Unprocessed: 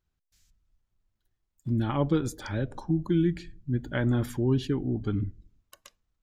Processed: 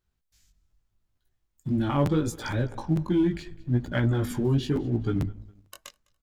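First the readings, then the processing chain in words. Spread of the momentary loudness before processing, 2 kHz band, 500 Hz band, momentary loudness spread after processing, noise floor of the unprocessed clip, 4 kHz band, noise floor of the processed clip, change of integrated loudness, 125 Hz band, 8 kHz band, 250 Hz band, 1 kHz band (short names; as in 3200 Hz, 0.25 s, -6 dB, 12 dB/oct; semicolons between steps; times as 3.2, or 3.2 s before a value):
7 LU, +2.5 dB, +1.5 dB, 6 LU, -82 dBFS, +3.0 dB, -78 dBFS, +2.0 dB, +2.0 dB, +3.5 dB, +1.5 dB, +3.0 dB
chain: in parallel at +2 dB: compressor, threshold -41 dBFS, peak gain reduction 19.5 dB; on the sum: feedback echo 0.205 s, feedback 35%, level -22 dB; chorus 0.78 Hz, delay 16.5 ms, depth 4.9 ms; sample leveller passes 1; crackling interface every 0.45 s, samples 512, repeat, from 0.7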